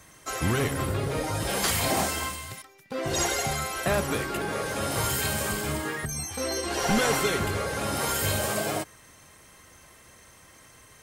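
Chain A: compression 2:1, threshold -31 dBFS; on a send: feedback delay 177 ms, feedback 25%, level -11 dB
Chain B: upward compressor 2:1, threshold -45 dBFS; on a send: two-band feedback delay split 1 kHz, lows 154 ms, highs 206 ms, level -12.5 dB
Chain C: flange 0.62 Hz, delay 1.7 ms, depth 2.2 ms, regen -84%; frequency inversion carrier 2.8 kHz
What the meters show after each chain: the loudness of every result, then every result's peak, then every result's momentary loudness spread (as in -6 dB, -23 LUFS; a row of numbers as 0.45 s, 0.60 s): -31.0 LUFS, -27.0 LUFS, -31.0 LUFS; -17.5 dBFS, -11.5 dBFS, -16.0 dBFS; 22 LU, 9 LU, 9 LU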